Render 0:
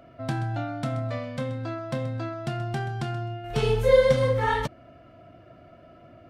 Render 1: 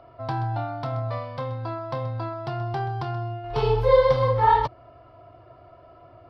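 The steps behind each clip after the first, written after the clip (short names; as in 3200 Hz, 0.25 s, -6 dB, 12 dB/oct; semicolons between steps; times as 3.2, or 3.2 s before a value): EQ curve 120 Hz 0 dB, 200 Hz -17 dB, 390 Hz +1 dB, 600 Hz -2 dB, 980 Hz +10 dB, 1500 Hz -4 dB, 2600 Hz -6 dB, 5000 Hz -1 dB, 7100 Hz -25 dB, 12000 Hz -17 dB; gain +1.5 dB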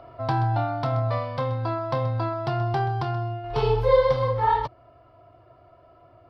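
vocal rider within 4 dB 2 s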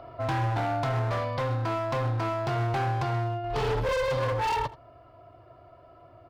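overloaded stage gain 26 dB; echo 83 ms -18 dB; gain +1 dB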